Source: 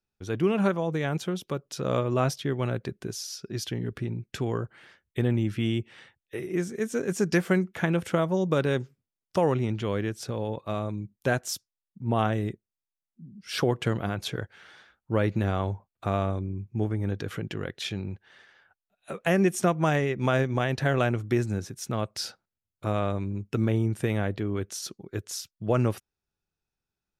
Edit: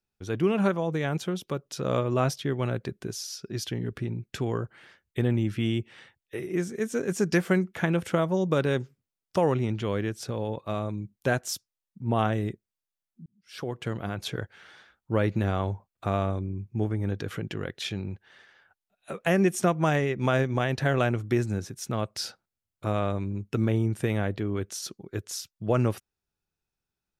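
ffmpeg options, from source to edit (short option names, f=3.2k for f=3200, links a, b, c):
-filter_complex "[0:a]asplit=2[a][b];[a]atrim=end=13.26,asetpts=PTS-STARTPTS,afade=t=out:st=13.256:d=0.004:c=hsin[c];[b]atrim=start=13.26,asetpts=PTS-STARTPTS,afade=t=in:d=1.13[d];[c][d]concat=n=2:v=0:a=1"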